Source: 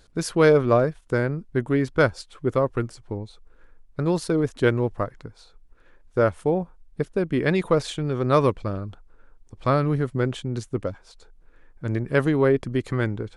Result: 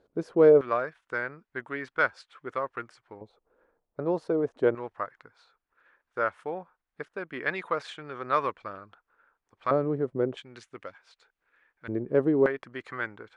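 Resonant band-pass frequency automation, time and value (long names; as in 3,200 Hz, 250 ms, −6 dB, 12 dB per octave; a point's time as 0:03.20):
resonant band-pass, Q 1.3
460 Hz
from 0:00.61 1,600 Hz
from 0:03.21 600 Hz
from 0:04.75 1,500 Hz
from 0:09.71 470 Hz
from 0:10.37 2,000 Hz
from 0:11.88 400 Hz
from 0:12.46 1,500 Hz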